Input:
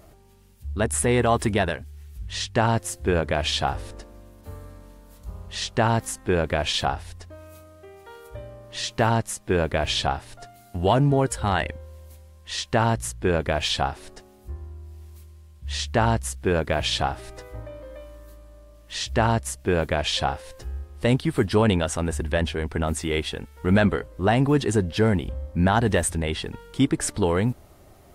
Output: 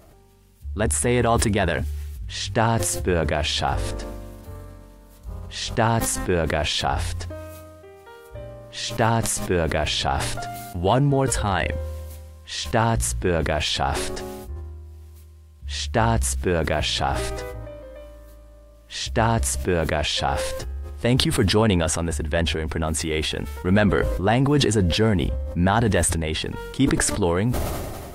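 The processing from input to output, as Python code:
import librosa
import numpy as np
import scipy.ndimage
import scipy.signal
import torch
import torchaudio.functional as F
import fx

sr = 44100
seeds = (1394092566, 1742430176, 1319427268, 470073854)

y = fx.sustainer(x, sr, db_per_s=27.0)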